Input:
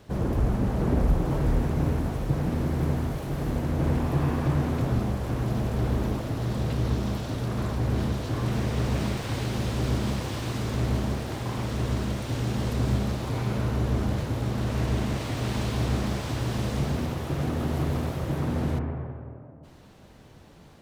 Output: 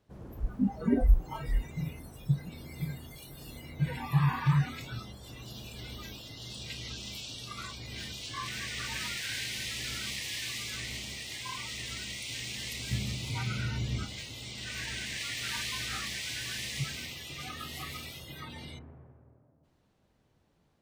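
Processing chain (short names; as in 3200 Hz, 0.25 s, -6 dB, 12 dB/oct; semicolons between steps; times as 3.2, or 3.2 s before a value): spectral noise reduction 24 dB; 12.91–14.05 bell 120 Hz +14 dB 2.5 oct; gain +4.5 dB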